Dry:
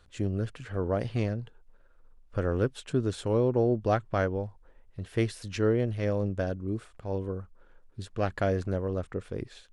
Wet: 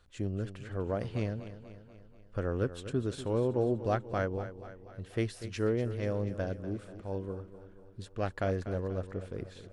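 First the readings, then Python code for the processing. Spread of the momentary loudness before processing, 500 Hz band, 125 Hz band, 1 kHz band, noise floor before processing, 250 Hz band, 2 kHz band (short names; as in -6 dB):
13 LU, -4.0 dB, -4.0 dB, -4.0 dB, -59 dBFS, -4.0 dB, -4.0 dB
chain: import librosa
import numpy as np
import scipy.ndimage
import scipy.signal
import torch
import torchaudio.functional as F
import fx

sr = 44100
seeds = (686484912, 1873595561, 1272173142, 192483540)

y = fx.echo_feedback(x, sr, ms=243, feedback_pct=56, wet_db=-13)
y = y * librosa.db_to_amplitude(-4.5)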